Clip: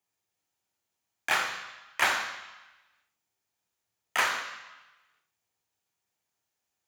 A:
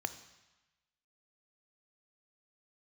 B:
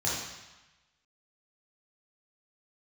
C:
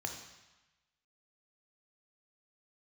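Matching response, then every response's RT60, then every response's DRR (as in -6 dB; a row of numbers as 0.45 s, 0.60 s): C; 1.1 s, 1.1 s, 1.1 s; 11.0 dB, -6.5 dB, 3.0 dB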